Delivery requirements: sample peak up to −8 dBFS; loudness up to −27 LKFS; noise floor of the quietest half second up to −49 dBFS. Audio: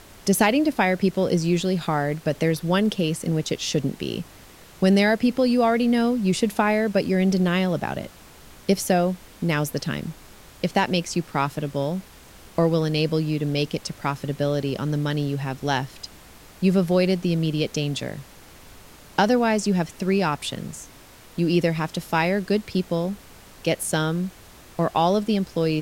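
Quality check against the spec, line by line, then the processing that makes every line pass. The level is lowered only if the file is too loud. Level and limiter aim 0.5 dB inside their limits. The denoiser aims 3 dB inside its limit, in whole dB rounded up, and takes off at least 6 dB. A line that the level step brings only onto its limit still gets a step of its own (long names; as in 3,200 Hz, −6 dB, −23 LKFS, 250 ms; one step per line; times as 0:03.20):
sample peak −6.0 dBFS: out of spec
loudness −23.5 LKFS: out of spec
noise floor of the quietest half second −47 dBFS: out of spec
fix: level −4 dB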